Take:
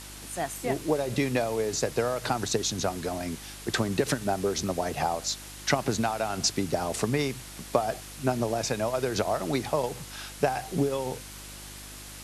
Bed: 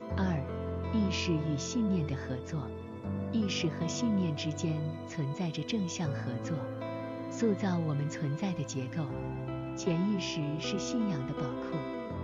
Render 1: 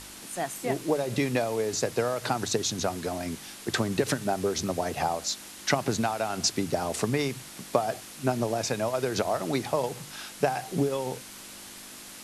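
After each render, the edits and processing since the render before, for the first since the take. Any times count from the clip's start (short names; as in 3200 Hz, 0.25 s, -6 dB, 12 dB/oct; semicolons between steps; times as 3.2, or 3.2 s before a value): de-hum 50 Hz, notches 3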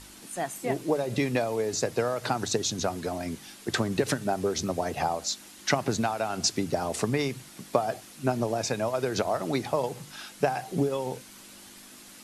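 denoiser 6 dB, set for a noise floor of -45 dBFS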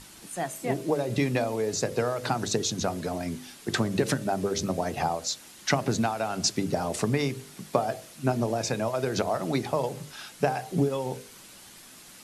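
bell 160 Hz +4 dB 1.3 oct; de-hum 50.1 Hz, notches 13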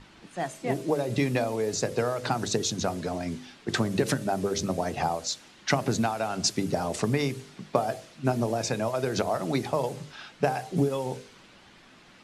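low-pass opened by the level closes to 2700 Hz, open at -23 dBFS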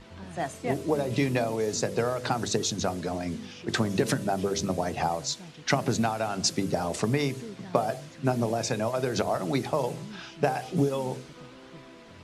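add bed -12.5 dB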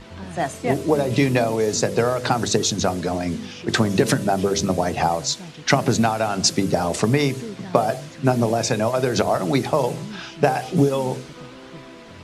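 gain +7.5 dB; limiter -2 dBFS, peak gain reduction 1 dB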